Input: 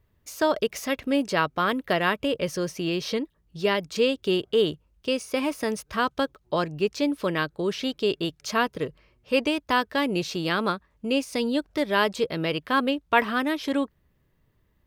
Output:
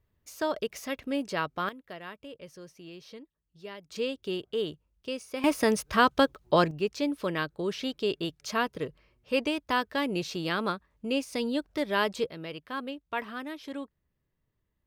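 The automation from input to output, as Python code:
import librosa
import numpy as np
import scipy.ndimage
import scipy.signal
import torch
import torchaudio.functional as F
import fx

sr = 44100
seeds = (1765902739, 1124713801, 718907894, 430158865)

y = fx.gain(x, sr, db=fx.steps((0.0, -7.0), (1.69, -19.0), (3.9, -9.0), (5.44, 3.0), (6.71, -4.5), (12.3, -12.5)))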